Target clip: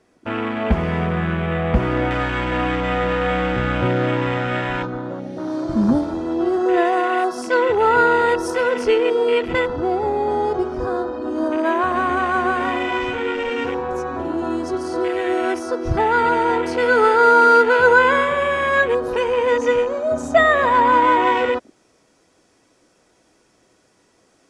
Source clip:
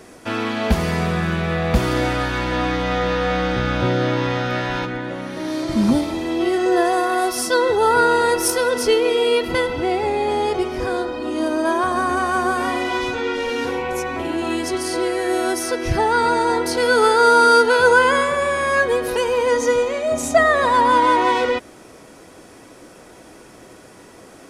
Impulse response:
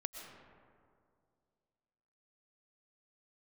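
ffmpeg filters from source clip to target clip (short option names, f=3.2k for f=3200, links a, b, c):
-af "aemphasis=mode=reproduction:type=50kf,afwtdn=0.0398,asetnsamples=n=441:p=0,asendcmd='2.11 equalizer g 13',equalizer=f=6.7k:w=0.58:g=4"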